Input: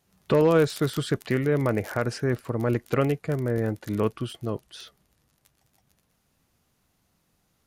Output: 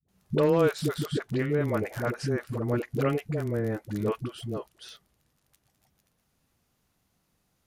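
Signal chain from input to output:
0:00.97–0:01.52: high-shelf EQ 6,300 Hz −9 dB
all-pass dispersion highs, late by 85 ms, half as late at 370 Hz
level −3 dB

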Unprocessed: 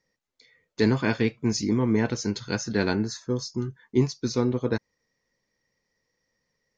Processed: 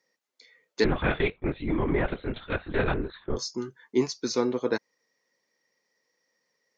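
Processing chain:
high-pass filter 320 Hz 12 dB per octave
0:00.84–0:03.37: linear-prediction vocoder at 8 kHz whisper
level +2 dB

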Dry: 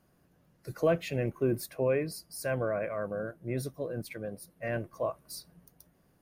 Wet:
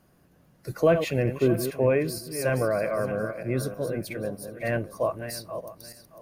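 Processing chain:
feedback delay that plays each chunk backwards 312 ms, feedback 43%, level −9 dB
level +6 dB

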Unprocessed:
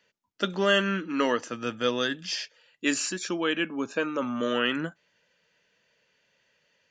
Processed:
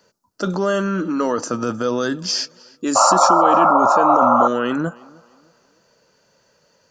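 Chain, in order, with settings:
flat-topped bell 2,500 Hz −14 dB 1.3 octaves
in parallel at +3 dB: compressor whose output falls as the input rises −34 dBFS, ratio −1
on the sum: sound drawn into the spectrogram noise, 0:02.95–0:04.48, 520–1,400 Hz −17 dBFS
tape delay 310 ms, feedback 34%, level −23.5 dB, low-pass 5,000 Hz
level +3 dB

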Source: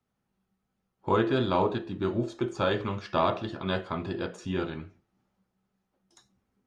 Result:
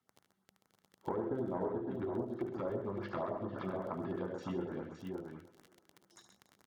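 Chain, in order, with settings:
spectral tilt +2.5 dB per octave
brickwall limiter −19 dBFS, peak gain reduction 5.5 dB
treble cut that deepens with the level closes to 710 Hz, closed at −30 dBFS
on a send: feedback echo with a high-pass in the loop 292 ms, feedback 46%, high-pass 200 Hz, level −20.5 dB
on the sum: surface crackle 12 per second −35 dBFS
tube saturation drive 21 dB, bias 0.7
high-pass filter 82 Hz
high-shelf EQ 2,600 Hz −11 dB
notch filter 2,500 Hz, Q 8.4
multi-tap delay 72/132/564 ms −9/−9/−7 dB
auto-filter notch saw up 8.9 Hz 440–4,600 Hz
downward compressor 2 to 1, threshold −45 dBFS, peak gain reduction 8.5 dB
level +6.5 dB

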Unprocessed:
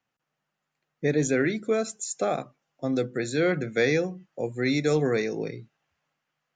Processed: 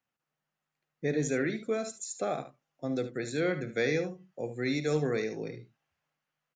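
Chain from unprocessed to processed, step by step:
ambience of single reflections 53 ms −16.5 dB, 74 ms −12 dB
level −6 dB

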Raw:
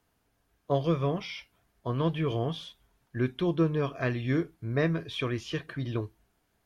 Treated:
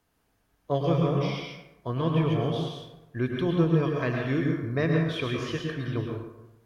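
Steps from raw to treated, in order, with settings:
dense smooth reverb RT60 0.92 s, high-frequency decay 0.55×, pre-delay 95 ms, DRR 0.5 dB

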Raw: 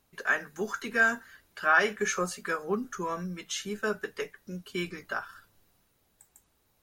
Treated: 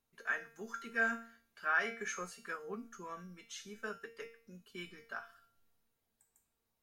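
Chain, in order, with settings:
dynamic equaliser 1,800 Hz, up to +6 dB, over −38 dBFS, Q 0.85
tuned comb filter 230 Hz, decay 0.47 s, harmonics all, mix 80%
level −2.5 dB

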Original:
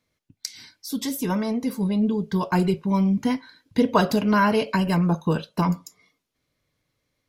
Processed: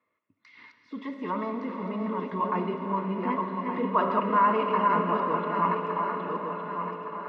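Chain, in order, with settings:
feedback delay that plays each chunk backwards 582 ms, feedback 52%, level −5 dB
low-shelf EQ 420 Hz −11.5 dB
in parallel at +1 dB: downward compressor, threshold −36 dBFS, peak gain reduction 18 dB
on the sum: transient designer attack −6 dB, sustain +2 dB
loudspeaker in its box 120–2,200 Hz, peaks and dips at 150 Hz −10 dB, 1,100 Hz +8 dB, 1,600 Hz −4 dB
notch comb filter 780 Hz
on a send: feedback delay with all-pass diffusion 459 ms, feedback 59%, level −9 dB
on the sum: comb and all-pass reverb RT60 3.7 s, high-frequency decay 0.85×, pre-delay 5 ms, DRR 7 dB
level −2.5 dB

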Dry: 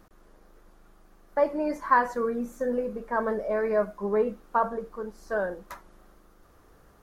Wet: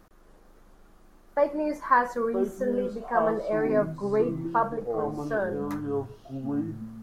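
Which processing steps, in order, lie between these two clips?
delay with pitch and tempo change per echo 287 ms, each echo −7 semitones, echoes 2, each echo −6 dB

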